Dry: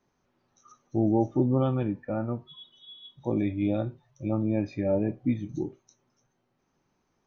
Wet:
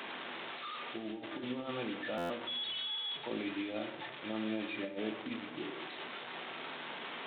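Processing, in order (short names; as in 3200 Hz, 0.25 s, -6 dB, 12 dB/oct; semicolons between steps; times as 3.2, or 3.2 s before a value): delta modulation 32 kbps, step -32.5 dBFS; HPF 330 Hz 12 dB/oct; tilt shelf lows -4.5 dB, about 1400 Hz; negative-ratio compressor -34 dBFS, ratio -0.5; on a send at -6 dB: reverb RT60 0.90 s, pre-delay 4 ms; on the sum: downsampling 8000 Hz; stuck buffer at 2.17, samples 512, times 10; gain -4 dB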